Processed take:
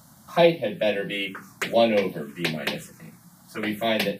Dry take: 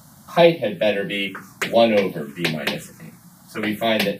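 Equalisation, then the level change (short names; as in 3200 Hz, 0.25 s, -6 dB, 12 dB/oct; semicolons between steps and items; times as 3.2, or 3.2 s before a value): notches 50/100/150/200 Hz; -4.0 dB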